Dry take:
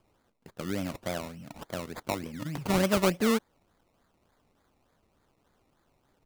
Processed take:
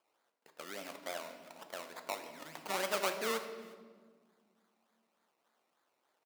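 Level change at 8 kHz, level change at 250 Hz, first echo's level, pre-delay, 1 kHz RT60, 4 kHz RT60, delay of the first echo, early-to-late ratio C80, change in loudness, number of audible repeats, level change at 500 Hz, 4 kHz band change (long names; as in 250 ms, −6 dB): −5.0 dB, −20.0 dB, −23.5 dB, 4 ms, 1.4 s, 1.1 s, 363 ms, 10.0 dB, −9.0 dB, 1, −8.5 dB, −4.5 dB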